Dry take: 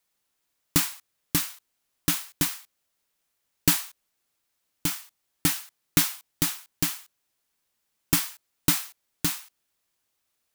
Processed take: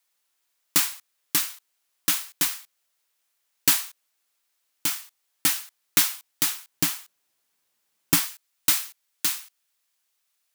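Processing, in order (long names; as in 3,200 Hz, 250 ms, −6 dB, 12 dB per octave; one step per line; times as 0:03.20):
high-pass filter 850 Hz 6 dB per octave, from 0:06.73 180 Hz, from 0:08.26 1,400 Hz
level +3 dB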